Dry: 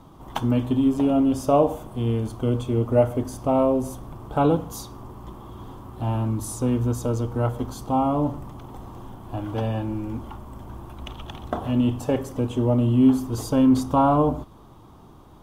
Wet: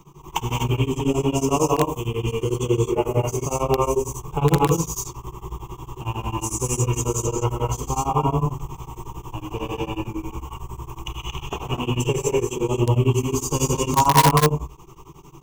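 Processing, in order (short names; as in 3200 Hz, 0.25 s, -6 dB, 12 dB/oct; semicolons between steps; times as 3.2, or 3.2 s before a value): bin magnitudes rounded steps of 15 dB; ripple EQ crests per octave 0.73, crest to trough 17 dB; non-linear reverb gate 0.27 s rising, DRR -3 dB; in parallel at -8 dB: wrapped overs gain 5 dB; on the sum: high shelf 3200 Hz +10 dB; beating tremolo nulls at 11 Hz; gain -4.5 dB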